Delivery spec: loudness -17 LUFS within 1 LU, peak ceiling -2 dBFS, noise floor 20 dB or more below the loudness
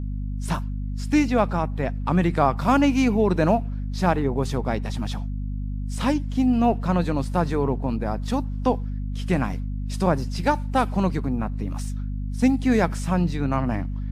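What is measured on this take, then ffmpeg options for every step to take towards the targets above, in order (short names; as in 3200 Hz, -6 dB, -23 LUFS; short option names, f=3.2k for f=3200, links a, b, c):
hum 50 Hz; harmonics up to 250 Hz; hum level -26 dBFS; loudness -24.0 LUFS; peak -6.0 dBFS; loudness target -17.0 LUFS
-> -af "bandreject=f=50:t=h:w=6,bandreject=f=100:t=h:w=6,bandreject=f=150:t=h:w=6,bandreject=f=200:t=h:w=6,bandreject=f=250:t=h:w=6"
-af "volume=7dB,alimiter=limit=-2dB:level=0:latency=1"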